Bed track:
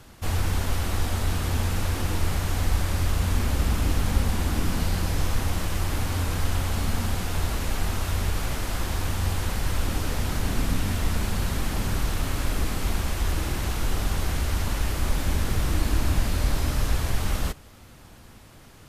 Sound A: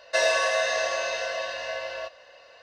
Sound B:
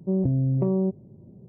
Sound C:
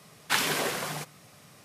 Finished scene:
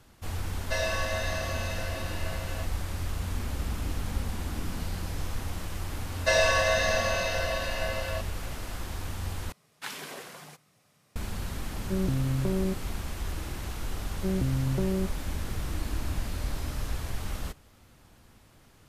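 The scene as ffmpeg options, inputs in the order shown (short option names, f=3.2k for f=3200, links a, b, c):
-filter_complex "[1:a]asplit=2[a][b];[2:a]asplit=2[c][d];[0:a]volume=-8.5dB[e];[a]highpass=420[f];[e]asplit=2[g][h];[g]atrim=end=9.524[i];[3:a]atrim=end=1.64,asetpts=PTS-STARTPTS,volume=-12.5dB[j];[h]atrim=start=11.156[k];[f]atrim=end=2.62,asetpts=PTS-STARTPTS,volume=-7.5dB,afade=t=in:d=0.004:c=hsin,afade=t=out:st=2.616:d=0.004:c=hsin,adelay=570[l];[b]atrim=end=2.62,asetpts=PTS-STARTPTS,volume=-0.5dB,afade=t=in:d=0.004:c=hsin,afade=t=out:st=2.616:d=0.004:c=hsin,adelay=6130[m];[c]atrim=end=1.48,asetpts=PTS-STARTPTS,volume=-5.5dB,afade=t=in:d=0.004:c=hsin,afade=t=out:st=1.476:d=0.004:c=hsin,adelay=11830[n];[d]atrim=end=1.48,asetpts=PTS-STARTPTS,volume=-5.5dB,afade=t=in:d=0.004:c=hsin,afade=t=out:st=1.476:d=0.004:c=hsin,adelay=14160[o];[i][j]acrossfade=d=0.004:c1=hsin:c2=hsin[p];[p][k]acrossfade=d=0.004:c1=hsin:c2=hsin[q];[q][l][m][n][o]amix=inputs=5:normalize=0"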